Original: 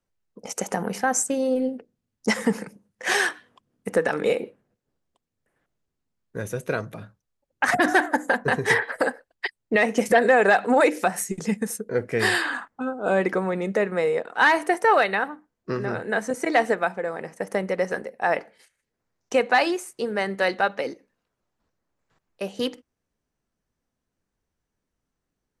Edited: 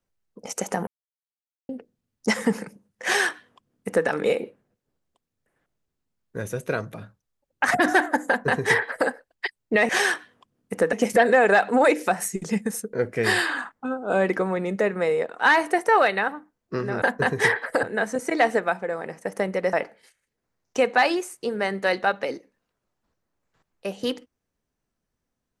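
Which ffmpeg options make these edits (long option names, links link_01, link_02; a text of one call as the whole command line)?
ffmpeg -i in.wav -filter_complex "[0:a]asplit=8[link_01][link_02][link_03][link_04][link_05][link_06][link_07][link_08];[link_01]atrim=end=0.87,asetpts=PTS-STARTPTS,afade=type=out:start_time=0.866:duration=0.004:curve=hsin[link_09];[link_02]atrim=start=0.87:end=1.69,asetpts=PTS-STARTPTS,volume=0[link_10];[link_03]atrim=start=1.69:end=9.892,asetpts=PTS-STARTPTS,afade=type=in:duration=0.004:curve=hsin[link_11];[link_04]atrim=start=3.038:end=4.082[link_12];[link_05]atrim=start=9.888:end=15.982[link_13];[link_06]atrim=start=8.278:end=9.092[link_14];[link_07]atrim=start=15.978:end=17.882[link_15];[link_08]atrim=start=18.288[link_16];[link_09][link_10][link_11]concat=n=3:v=0:a=1[link_17];[link_17][link_12]acrossfade=duration=0.004:curve1=hsin:curve2=hsin[link_18];[link_18][link_13]acrossfade=duration=0.004:curve1=hsin:curve2=hsin[link_19];[link_19][link_14]acrossfade=duration=0.004:curve1=hsin:curve2=hsin[link_20];[link_20][link_15]acrossfade=duration=0.004:curve1=hsin:curve2=hsin[link_21];[link_21][link_16]acrossfade=duration=0.004:curve1=hsin:curve2=hsin" out.wav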